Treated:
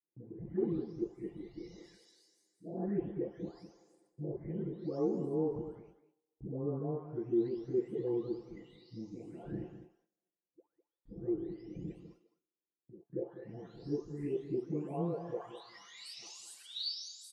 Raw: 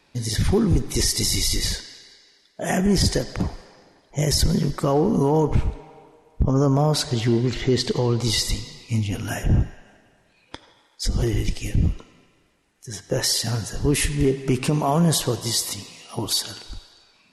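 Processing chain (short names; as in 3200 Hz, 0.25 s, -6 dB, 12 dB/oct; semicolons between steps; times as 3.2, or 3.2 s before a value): spectral delay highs late, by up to 0.929 s; Bessel low-pass 7600 Hz, order 2; gate -43 dBFS, range -21 dB; band-pass sweep 340 Hz -> 4200 Hz, 14.99–16.45; outdoor echo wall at 35 m, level -12 dB; gain -6.5 dB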